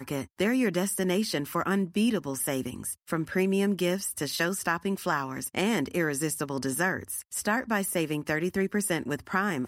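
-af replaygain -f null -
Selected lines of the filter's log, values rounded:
track_gain = +9.8 dB
track_peak = 0.184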